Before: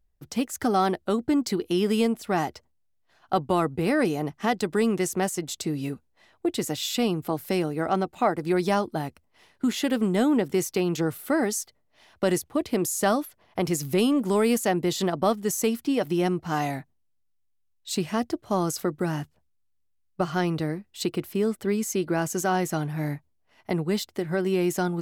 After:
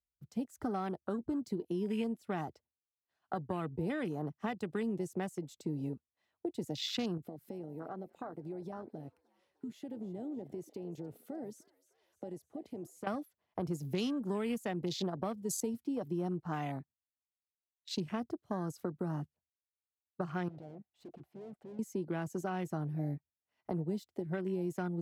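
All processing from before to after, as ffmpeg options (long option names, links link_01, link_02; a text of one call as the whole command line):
ffmpeg -i in.wav -filter_complex "[0:a]asettb=1/sr,asplit=3[link_01][link_02][link_03];[link_01]atrim=end=7.174[link_04];[link_02]atrim=start=7.17:end=13.07,asetpts=PTS-STARTPTS,afade=type=in:duration=0.004:curve=qsin,afade=type=out:start_time=5.896:duration=0.004:curve=qsin,acompressor=threshold=-34dB:ratio=5:attack=3.2:release=140:knee=1:detection=peak,asplit=6[link_05][link_06][link_07][link_08][link_09][link_10];[link_06]adelay=303,afreqshift=67,volume=-16dB[link_11];[link_07]adelay=606,afreqshift=134,volume=-21dB[link_12];[link_08]adelay=909,afreqshift=201,volume=-26.1dB[link_13];[link_09]adelay=1212,afreqshift=268,volume=-31.1dB[link_14];[link_10]adelay=1515,afreqshift=335,volume=-36.1dB[link_15];[link_05][link_11][link_12][link_13][link_14][link_15]amix=inputs=6:normalize=0,atrim=end_sample=260190[link_16];[link_03]atrim=start=13.066[link_17];[link_04][link_16]acrossfade=duration=0.004:curve1=hsin:curve2=qsin[link_18];[link_18][link_17]acrossfade=duration=0.004:curve1=qsin:curve2=hsin,asettb=1/sr,asplit=3[link_19][link_20][link_21];[link_19]atrim=end=20.484[link_22];[link_20]atrim=start=20.48:end=21.79,asetpts=PTS-STARTPTS,afade=type=in:duration=0.004:curve=qsin,afade=type=out:start_time=1.306:duration=0.004:curve=qsin,lowpass=frequency=1900:poles=1,equalizer=frequency=740:width_type=o:width=0.65:gain=13.5,aeval=exprs='(tanh(89.1*val(0)+0.65)-tanh(0.65))/89.1':channel_layout=same[link_23];[link_21]atrim=start=21.786[link_24];[link_22][link_23]acrossfade=duration=0.004:curve1=hsin:curve2=qsin[link_25];[link_25][link_24]acrossfade=duration=0.004:curve1=qsin:curve2=hsin,highpass=46,afwtdn=0.02,acrossover=split=170|3000[link_26][link_27][link_28];[link_27]acompressor=threshold=-29dB:ratio=6[link_29];[link_26][link_29][link_28]amix=inputs=3:normalize=0,volume=-6dB" out.wav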